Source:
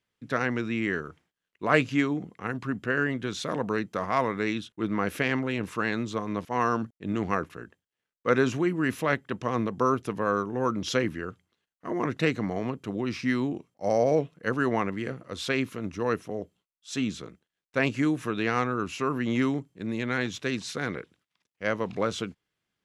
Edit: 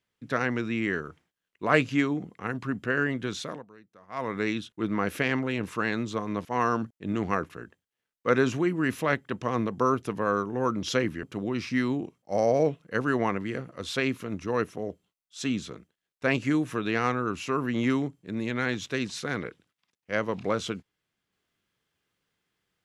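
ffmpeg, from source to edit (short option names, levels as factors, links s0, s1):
-filter_complex "[0:a]asplit=4[s0][s1][s2][s3];[s0]atrim=end=3.65,asetpts=PTS-STARTPTS,afade=t=out:st=3.35:d=0.3:silence=0.0630957[s4];[s1]atrim=start=3.65:end=4.08,asetpts=PTS-STARTPTS,volume=0.0631[s5];[s2]atrim=start=4.08:end=11.232,asetpts=PTS-STARTPTS,afade=t=in:d=0.3:silence=0.0630957[s6];[s3]atrim=start=12.748[s7];[s4][s5][s6]concat=n=3:v=0:a=1[s8];[s8][s7]acrossfade=d=0.004:c1=hsin:c2=hsin"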